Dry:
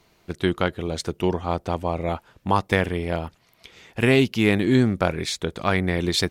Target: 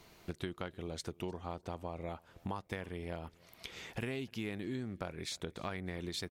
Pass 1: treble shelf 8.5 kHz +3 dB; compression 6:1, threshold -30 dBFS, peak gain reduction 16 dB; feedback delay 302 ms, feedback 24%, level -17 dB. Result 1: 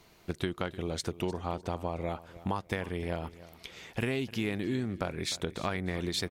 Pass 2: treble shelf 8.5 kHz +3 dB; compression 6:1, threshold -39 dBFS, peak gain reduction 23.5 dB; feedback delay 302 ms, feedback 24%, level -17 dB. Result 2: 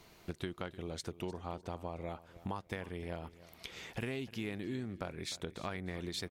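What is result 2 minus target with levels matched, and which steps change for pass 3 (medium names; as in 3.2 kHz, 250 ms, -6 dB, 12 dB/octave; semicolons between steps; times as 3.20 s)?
echo-to-direct +8 dB
change: feedback delay 302 ms, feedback 24%, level -25 dB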